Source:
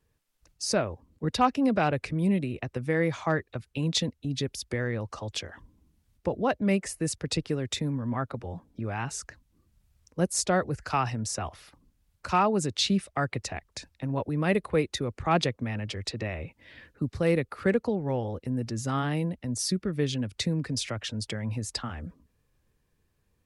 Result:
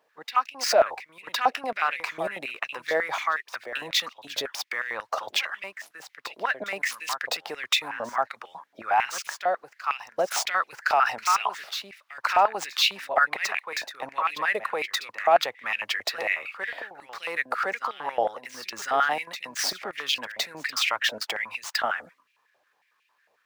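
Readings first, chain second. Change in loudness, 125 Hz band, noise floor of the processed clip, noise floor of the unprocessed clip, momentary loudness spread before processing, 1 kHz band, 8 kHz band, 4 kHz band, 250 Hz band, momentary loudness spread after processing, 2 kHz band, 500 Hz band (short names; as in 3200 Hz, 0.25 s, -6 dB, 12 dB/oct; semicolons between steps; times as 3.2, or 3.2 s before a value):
+2.5 dB, under -25 dB, -70 dBFS, -73 dBFS, 10 LU, +6.5 dB, +0.5 dB, +6.0 dB, -18.0 dB, 11 LU, +9.5 dB, +0.5 dB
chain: median filter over 5 samples; reverse echo 1.063 s -13.5 dB; limiter -24 dBFS, peak gain reduction 11 dB; stepped high-pass 11 Hz 660–2500 Hz; gain +8 dB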